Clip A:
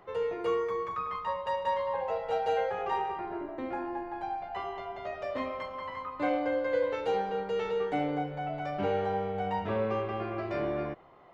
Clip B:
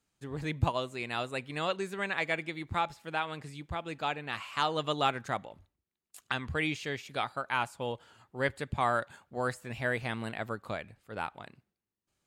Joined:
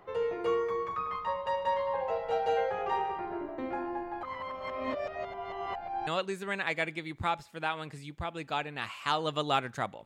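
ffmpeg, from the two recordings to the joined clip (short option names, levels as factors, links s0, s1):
-filter_complex "[0:a]apad=whole_dur=10.05,atrim=end=10.05,asplit=2[s0][s1];[s0]atrim=end=4.232[s2];[s1]atrim=start=4.228:end=6.072,asetpts=PTS-STARTPTS,areverse[s3];[1:a]atrim=start=1.578:end=5.56[s4];[s2][s3]acrossfade=d=0.004:c1=hsin:c2=hsin[s5];[s5][s4]acrossfade=d=0.004:c1=hsin:c2=hsin"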